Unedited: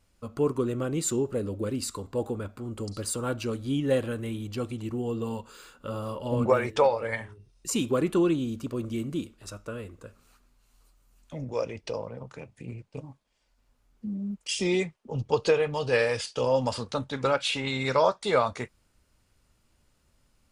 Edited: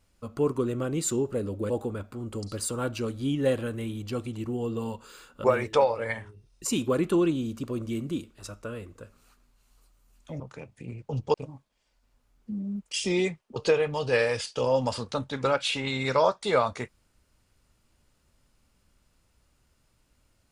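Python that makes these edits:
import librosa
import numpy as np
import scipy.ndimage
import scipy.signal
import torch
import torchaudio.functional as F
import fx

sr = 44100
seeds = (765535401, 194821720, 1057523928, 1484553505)

y = fx.edit(x, sr, fx.cut(start_s=1.7, length_s=0.45),
    fx.cut(start_s=5.89, length_s=0.58),
    fx.cut(start_s=11.43, length_s=0.77),
    fx.move(start_s=15.11, length_s=0.25, to_s=12.89), tone=tone)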